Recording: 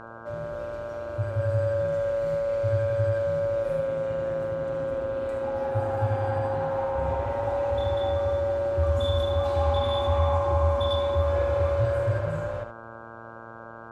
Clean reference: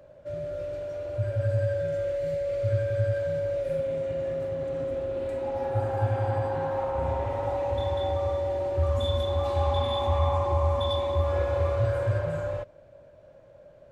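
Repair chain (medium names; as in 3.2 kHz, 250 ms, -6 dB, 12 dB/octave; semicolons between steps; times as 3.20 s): de-hum 114.1 Hz, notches 14; inverse comb 76 ms -9 dB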